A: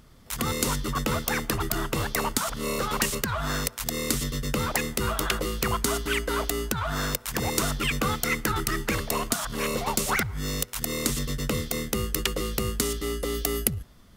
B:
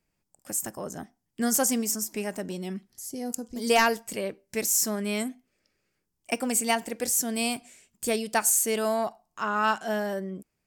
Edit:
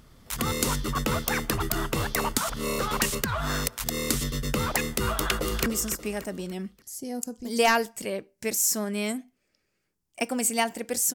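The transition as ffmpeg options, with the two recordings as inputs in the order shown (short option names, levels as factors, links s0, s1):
-filter_complex "[0:a]apad=whole_dur=11.14,atrim=end=11.14,atrim=end=5.662[s0];[1:a]atrim=start=1.768:end=7.25[s1];[s0][s1]acrossfade=d=0.004:c1=hsin:c2=hsin,asplit=2[s2][s3];[s3]afade=t=in:st=5.12:d=0.01,afade=t=out:st=5.66:d=0.01,aecho=0:1:290|580|870|1160:0.334965|0.133986|0.0535945|0.0214378[s4];[s2][s4]amix=inputs=2:normalize=0"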